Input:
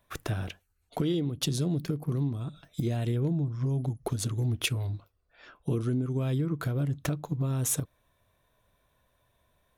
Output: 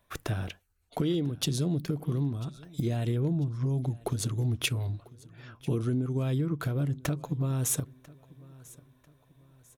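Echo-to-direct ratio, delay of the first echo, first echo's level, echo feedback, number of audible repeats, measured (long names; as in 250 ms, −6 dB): −21.5 dB, 994 ms, −22.0 dB, 38%, 2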